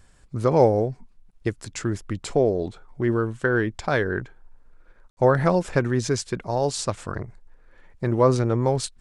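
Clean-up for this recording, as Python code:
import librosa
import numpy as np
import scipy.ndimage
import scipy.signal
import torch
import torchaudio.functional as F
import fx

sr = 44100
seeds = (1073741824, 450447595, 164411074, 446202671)

y = fx.fix_ambience(x, sr, seeds[0], print_start_s=0.95, print_end_s=1.45, start_s=5.1, end_s=5.17)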